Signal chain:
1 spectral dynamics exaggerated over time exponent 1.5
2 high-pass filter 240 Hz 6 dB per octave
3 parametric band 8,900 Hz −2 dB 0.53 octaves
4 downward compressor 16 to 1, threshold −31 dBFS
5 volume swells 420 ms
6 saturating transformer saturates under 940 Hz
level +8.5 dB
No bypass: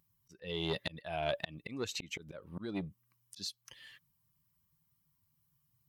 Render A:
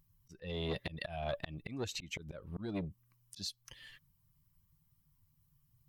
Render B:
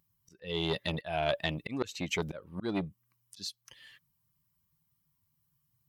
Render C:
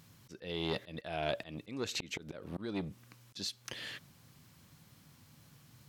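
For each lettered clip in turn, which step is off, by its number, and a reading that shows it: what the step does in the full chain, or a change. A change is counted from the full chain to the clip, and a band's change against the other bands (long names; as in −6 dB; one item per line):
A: 2, 125 Hz band +4.5 dB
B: 4, average gain reduction 3.0 dB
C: 1, change in momentary loudness spread +6 LU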